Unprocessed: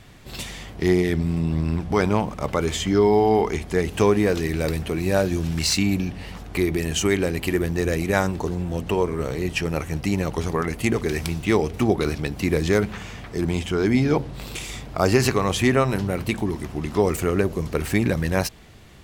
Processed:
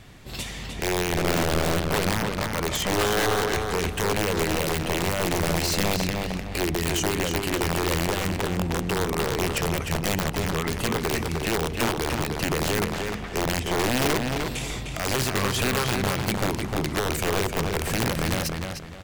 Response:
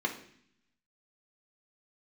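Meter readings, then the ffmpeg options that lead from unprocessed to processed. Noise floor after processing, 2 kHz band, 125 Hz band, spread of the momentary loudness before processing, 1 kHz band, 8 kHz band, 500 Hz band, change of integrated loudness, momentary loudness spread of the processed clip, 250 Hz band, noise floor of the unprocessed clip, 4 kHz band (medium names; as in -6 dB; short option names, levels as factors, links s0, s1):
-35 dBFS, +1.0 dB, -3.5 dB, 8 LU, +0.5 dB, +2.5 dB, -4.5 dB, -2.5 dB, 5 LU, -5.5 dB, -39 dBFS, +3.0 dB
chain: -filter_complex "[0:a]alimiter=limit=0.168:level=0:latency=1:release=103,aeval=exprs='(mod(7.94*val(0)+1,2)-1)/7.94':c=same,asplit=2[s0][s1];[s1]adelay=304,lowpass=f=4700:p=1,volume=0.631,asplit=2[s2][s3];[s3]adelay=304,lowpass=f=4700:p=1,volume=0.31,asplit=2[s4][s5];[s5]adelay=304,lowpass=f=4700:p=1,volume=0.31,asplit=2[s6][s7];[s7]adelay=304,lowpass=f=4700:p=1,volume=0.31[s8];[s0][s2][s4][s6][s8]amix=inputs=5:normalize=0"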